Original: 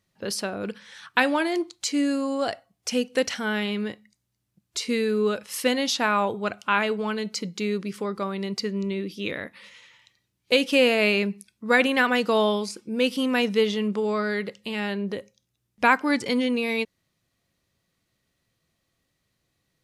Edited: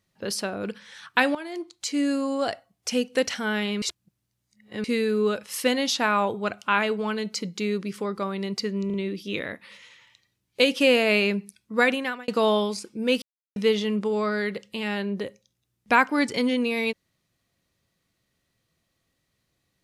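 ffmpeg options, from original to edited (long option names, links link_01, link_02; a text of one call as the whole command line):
ffmpeg -i in.wav -filter_complex "[0:a]asplit=9[link_01][link_02][link_03][link_04][link_05][link_06][link_07][link_08][link_09];[link_01]atrim=end=1.35,asetpts=PTS-STARTPTS,afade=type=out:start_time=1.346:duration=0.004:curve=hsin:silence=0.16788[link_10];[link_02]atrim=start=1.35:end=3.822,asetpts=PTS-STARTPTS,afade=type=in:duration=0.75:silence=0.16788[link_11];[link_03]atrim=start=3.818:end=4.842,asetpts=PTS-STARTPTS,areverse[link_12];[link_04]atrim=start=4.838:end=8.902[link_13];[link_05]atrim=start=8.858:end=8.902[link_14];[link_06]atrim=start=8.858:end=12.2,asetpts=PTS-STARTPTS,afade=type=out:start_time=2.832:duration=0.51[link_15];[link_07]atrim=start=12.2:end=13.14,asetpts=PTS-STARTPTS,afade=type=in:duration=0.004:curve=hsin,afade=type=out:start_time=0.936:duration=0.004:curve=hsin[link_16];[link_08]atrim=start=13.14:end=13.48,asetpts=PTS-STARTPTS,volume=0[link_17];[link_09]atrim=start=13.48,asetpts=PTS-STARTPTS,afade=type=in:duration=0.004:curve=hsin[link_18];[link_10][link_11]concat=n=2:v=0:a=1[link_19];[link_19][link_12]acrossfade=duration=0.004:curve1=hsin:curve2=hsin[link_20];[link_20][link_13]acrossfade=duration=0.004:curve1=hsin:curve2=hsin[link_21];[link_21][link_14]acrossfade=duration=0.004:curve1=hsin:curve2=hsin[link_22];[link_15][link_16][link_17][link_18]concat=n=4:v=0:a=1[link_23];[link_22][link_23]acrossfade=duration=0.004:curve1=hsin:curve2=hsin" out.wav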